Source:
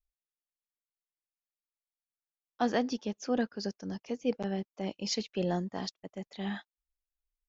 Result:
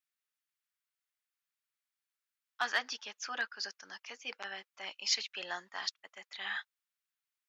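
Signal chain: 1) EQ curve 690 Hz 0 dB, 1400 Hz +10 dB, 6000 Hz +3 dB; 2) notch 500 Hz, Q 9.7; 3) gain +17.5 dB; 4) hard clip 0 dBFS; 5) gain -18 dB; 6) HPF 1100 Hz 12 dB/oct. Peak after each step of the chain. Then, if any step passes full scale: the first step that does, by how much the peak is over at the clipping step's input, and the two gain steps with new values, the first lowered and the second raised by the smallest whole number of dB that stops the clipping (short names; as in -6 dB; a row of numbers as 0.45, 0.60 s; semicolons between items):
-12.5, -13.0, +4.5, 0.0, -18.0, -16.5 dBFS; step 3, 4.5 dB; step 3 +12.5 dB, step 5 -13 dB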